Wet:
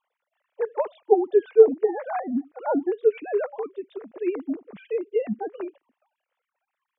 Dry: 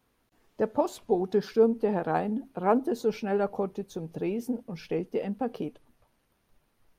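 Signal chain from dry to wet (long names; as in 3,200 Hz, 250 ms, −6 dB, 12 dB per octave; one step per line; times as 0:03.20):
three sine waves on the formant tracks
level +4.5 dB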